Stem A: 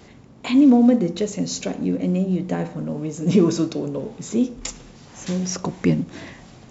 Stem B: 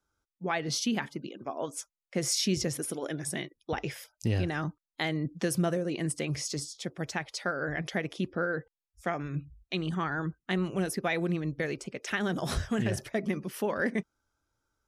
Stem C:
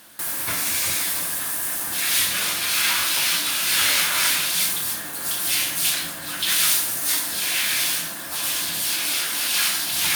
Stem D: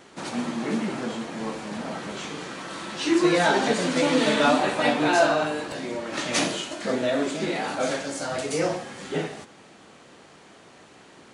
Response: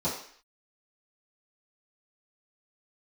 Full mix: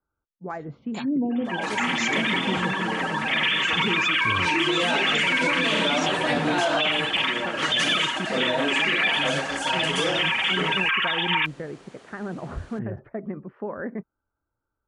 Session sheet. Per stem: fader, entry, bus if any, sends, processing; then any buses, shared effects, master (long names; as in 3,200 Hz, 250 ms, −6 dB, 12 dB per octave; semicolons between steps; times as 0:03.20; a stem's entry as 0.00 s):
−11.5 dB, 0.50 s, no send, gate on every frequency bin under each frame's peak −30 dB strong; high-shelf EQ 5,500 Hz +10.5 dB
−1.5 dB, 0.00 s, no send, low-pass filter 1,500 Hz 24 dB per octave
−2.0 dB, 1.30 s, send −14 dB, three sine waves on the formant tracks; notch filter 1,500 Hz, Q 7.9; comb filter 6.3 ms, depth 99%
−1.0 dB, 1.45 s, no send, no processing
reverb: on, RT60 0.55 s, pre-delay 3 ms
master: brickwall limiter −13.5 dBFS, peak gain reduction 8.5 dB